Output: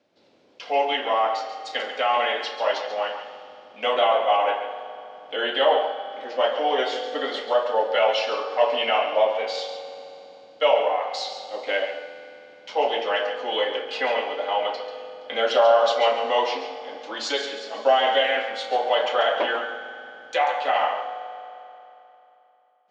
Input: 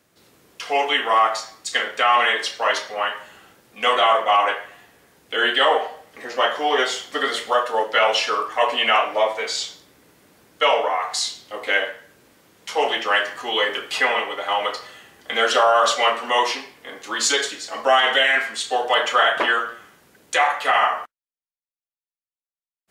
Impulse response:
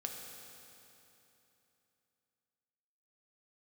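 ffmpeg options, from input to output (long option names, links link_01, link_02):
-filter_complex "[0:a]highpass=130,equalizer=frequency=140:width_type=q:width=4:gain=-9,equalizer=frequency=270:width_type=q:width=4:gain=4,equalizer=frequency=570:width_type=q:width=4:gain=9,equalizer=frequency=820:width_type=q:width=4:gain=4,equalizer=frequency=1200:width_type=q:width=4:gain=-6,equalizer=frequency=1800:width_type=q:width=4:gain=-5,lowpass=frequency=5000:width=0.5412,lowpass=frequency=5000:width=1.3066,asplit=2[link_01][link_02];[1:a]atrim=start_sample=2205,adelay=139[link_03];[link_02][link_03]afir=irnorm=-1:irlink=0,volume=-7dB[link_04];[link_01][link_04]amix=inputs=2:normalize=0,volume=-5.5dB"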